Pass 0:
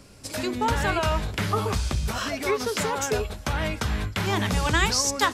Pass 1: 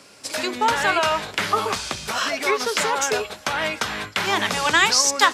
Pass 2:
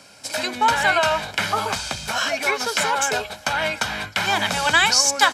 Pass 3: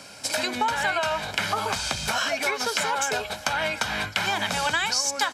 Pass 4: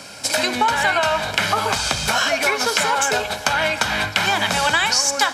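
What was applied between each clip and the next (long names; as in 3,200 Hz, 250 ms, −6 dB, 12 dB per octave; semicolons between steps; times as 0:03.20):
meter weighting curve A; level +6 dB
comb filter 1.3 ms, depth 51%
downward compressor 4 to 1, threshold −27 dBFS, peak gain reduction 14.5 dB; level +3.5 dB
convolution reverb RT60 1.6 s, pre-delay 34 ms, DRR 12.5 dB; level +6.5 dB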